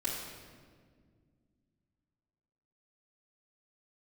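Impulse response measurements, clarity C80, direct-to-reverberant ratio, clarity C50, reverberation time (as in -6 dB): 3.0 dB, -10.0 dB, 1.0 dB, 1.8 s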